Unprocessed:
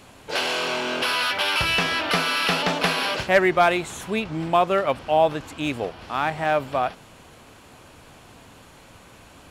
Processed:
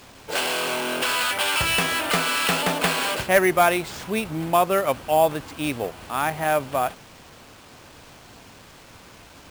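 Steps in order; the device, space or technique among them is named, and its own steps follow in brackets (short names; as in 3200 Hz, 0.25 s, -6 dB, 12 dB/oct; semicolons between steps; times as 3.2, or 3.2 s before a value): early 8-bit sampler (sample-rate reducer 12000 Hz, jitter 0%; bit-crush 8-bit)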